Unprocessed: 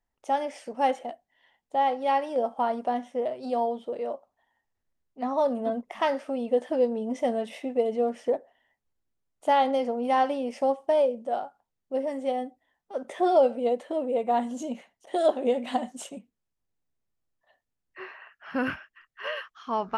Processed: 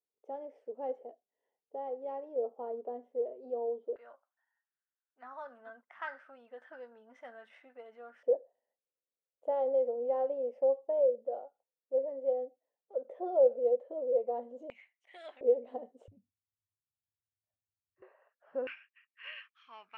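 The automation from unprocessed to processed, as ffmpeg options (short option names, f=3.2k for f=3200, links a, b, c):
-af "asetnsamples=n=441:p=0,asendcmd='3.96 bandpass f 1500;8.23 bandpass f 510;14.7 bandpass f 2200;15.41 bandpass f 470;16.08 bandpass f 100;18.02 bandpass f 530;18.67 bandpass f 2400',bandpass=f=440:t=q:w=6.8:csg=0"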